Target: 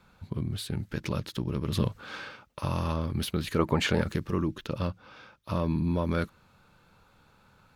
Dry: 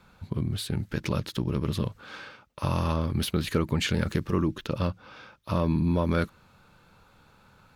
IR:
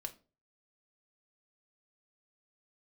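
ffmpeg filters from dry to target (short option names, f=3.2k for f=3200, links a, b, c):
-filter_complex "[0:a]asettb=1/sr,asplit=3[a][b][c];[a]atrim=end=1.724[d];[b]atrim=start=1.72:end=2.61,asetpts=PTS-STARTPTS,afade=t=in:d=0.004:c=qsin,afade=t=out:st=0.886:d=0.004:c=qsin,acontrast=28[e];[c]atrim=start=2.606[f];[d][e]acrossfade=d=0.004:c1=hsin:c2=qsin[g];[g][f]acrossfade=d=0.004:c1=qsin:c2=hsin,asettb=1/sr,asplit=3[h][i][j];[h]atrim=end=3.594[k];[i]atrim=start=3.59:end=4.02,asetpts=PTS-STARTPTS,afade=t=in:d=0.004:c=qsin,afade=t=out:st=0.426:d=0.004:c=qsin,equalizer=f=760:t=o:w=2.3:g=12[l];[j]atrim=start=4.016[m];[k][l]acrossfade=d=0.004:c1=hsin:c2=qsin[n];[n][m]acrossfade=d=0.004:c1=qsin:c2=hsin,volume=-3dB"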